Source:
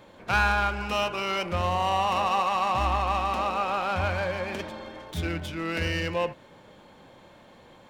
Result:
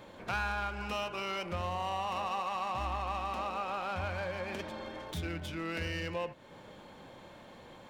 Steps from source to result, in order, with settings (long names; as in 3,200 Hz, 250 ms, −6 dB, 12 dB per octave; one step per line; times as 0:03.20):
downward compressor 2 to 1, threshold −40 dBFS, peak gain reduction 11.5 dB